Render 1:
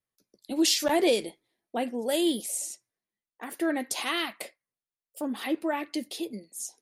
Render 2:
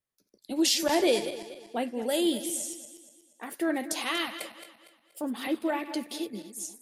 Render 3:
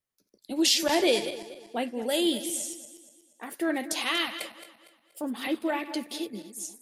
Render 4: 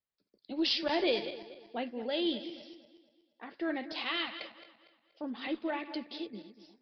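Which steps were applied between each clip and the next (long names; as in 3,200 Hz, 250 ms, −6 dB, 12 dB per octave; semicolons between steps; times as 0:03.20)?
feedback delay that plays each chunk backwards 119 ms, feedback 60%, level −11.5 dB; level −1 dB
dynamic equaliser 3,100 Hz, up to +4 dB, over −41 dBFS, Q 0.79
harmonic generator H 2 −23 dB, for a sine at −10.5 dBFS; downsampling to 11,025 Hz; level −6 dB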